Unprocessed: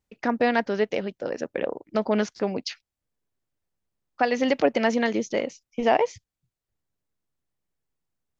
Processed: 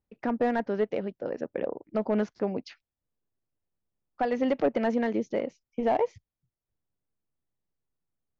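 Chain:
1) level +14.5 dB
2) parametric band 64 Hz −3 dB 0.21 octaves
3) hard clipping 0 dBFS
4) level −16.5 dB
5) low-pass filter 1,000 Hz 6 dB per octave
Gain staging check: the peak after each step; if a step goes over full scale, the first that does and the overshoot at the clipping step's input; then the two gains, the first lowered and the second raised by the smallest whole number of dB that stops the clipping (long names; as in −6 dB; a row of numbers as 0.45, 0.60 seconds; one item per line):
+7.5, +7.5, 0.0, −16.5, −16.5 dBFS
step 1, 7.5 dB
step 1 +6.5 dB, step 4 −8.5 dB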